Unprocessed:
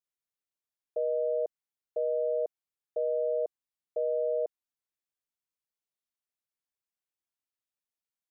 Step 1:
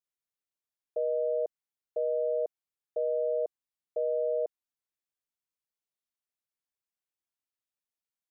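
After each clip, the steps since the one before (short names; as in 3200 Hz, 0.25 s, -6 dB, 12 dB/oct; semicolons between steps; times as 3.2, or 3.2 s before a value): nothing audible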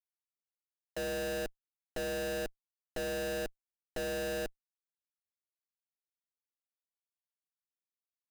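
low-pass opened by the level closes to 370 Hz, open at -25.5 dBFS; Schmitt trigger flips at -41 dBFS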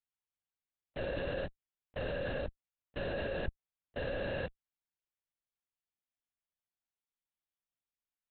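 LPC vocoder at 8 kHz whisper; gain -1 dB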